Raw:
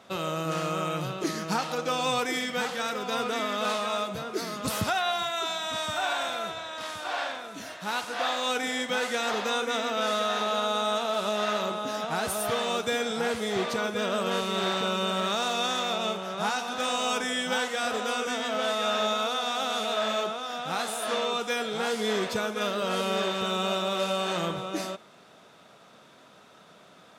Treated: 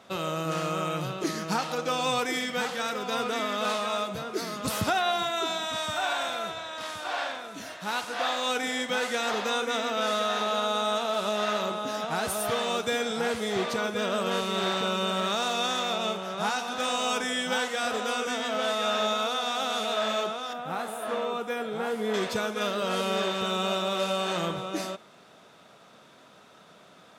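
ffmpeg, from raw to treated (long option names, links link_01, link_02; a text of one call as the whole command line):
ffmpeg -i in.wav -filter_complex "[0:a]asettb=1/sr,asplit=3[link_01][link_02][link_03];[link_01]atrim=end=4.874[link_04];[link_02]atrim=start=4.87:end=5.65,asetpts=PTS-STARTPTS,afade=type=in:duration=0.004:curve=qsin,afade=type=out:start_time=0.776:duration=0.004:curve=qsin,equalizer=frequency=290:width_type=o:width=1.6:gain=8[link_05];[link_03]atrim=start=5.646[link_06];[link_04][link_05]acrossfade=duration=0.004:curve1=hsin:curve2=qsin[link_07];[link_07][link_06]acrossfade=duration=0.004:curve1=qsin:curve2=hsin,asettb=1/sr,asplit=3[link_08][link_09][link_10];[link_08]atrim=end=20.534[link_11];[link_09]atrim=start=20.53:end=22.14,asetpts=PTS-STARTPTS,afade=type=in:duration=0.004:curve=qsin,afade=type=out:start_time=1.606:duration=0.004:curve=qsin,equalizer=frequency=5400:width=0.58:gain=-14[link_12];[link_10]atrim=start=22.136[link_13];[link_11][link_12]acrossfade=duration=0.004:curve1=hsin:curve2=qsin[link_14];[link_14][link_13]acrossfade=duration=0.004:curve1=qsin:curve2=hsin" out.wav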